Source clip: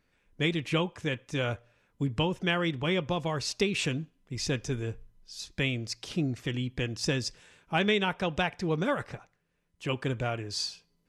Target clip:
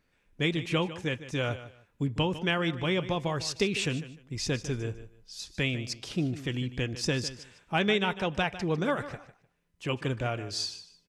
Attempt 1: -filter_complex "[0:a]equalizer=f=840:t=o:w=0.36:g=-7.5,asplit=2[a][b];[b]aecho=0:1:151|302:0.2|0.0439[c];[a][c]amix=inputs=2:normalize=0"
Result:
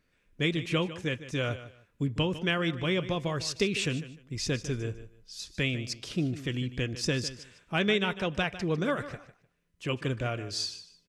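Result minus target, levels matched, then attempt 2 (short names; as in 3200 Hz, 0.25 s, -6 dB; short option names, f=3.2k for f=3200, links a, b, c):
1000 Hz band -3.0 dB
-filter_complex "[0:a]asplit=2[a][b];[b]aecho=0:1:151|302:0.2|0.0439[c];[a][c]amix=inputs=2:normalize=0"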